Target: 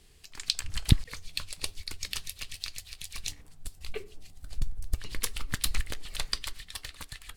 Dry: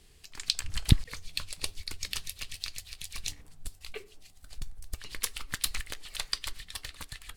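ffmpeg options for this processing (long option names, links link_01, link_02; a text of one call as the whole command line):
ffmpeg -i in.wav -filter_complex "[0:a]asettb=1/sr,asplit=3[link_01][link_02][link_03];[link_01]atrim=end=3.774[link_04];[link_02]atrim=start=3.77:end=6.43,asetpts=PTS-STARTPTS,afade=type=in:duration=0.004:curve=qsin,afade=type=out:start_time=2.656:duration=0.004:curve=qsin,lowshelf=frequency=460:gain=9[link_05];[link_03]atrim=start=6.426[link_06];[link_04][link_05]acrossfade=duration=0.004:curve1=hsin:curve2=qsin[link_07];[link_07][link_06]acrossfade=duration=0.004:curve1=qsin:curve2=hsin" out.wav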